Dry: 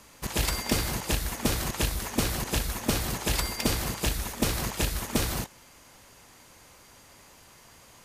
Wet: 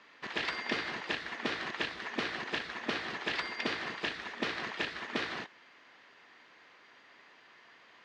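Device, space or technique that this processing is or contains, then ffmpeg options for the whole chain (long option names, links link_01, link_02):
phone earpiece: -af "highpass=360,equalizer=frequency=550:width_type=q:width=4:gain=-6,equalizer=frequency=850:width_type=q:width=4:gain=-4,equalizer=frequency=1800:width_type=q:width=4:gain=7,lowpass=frequency=3900:width=0.5412,lowpass=frequency=3900:width=1.3066,volume=-2.5dB"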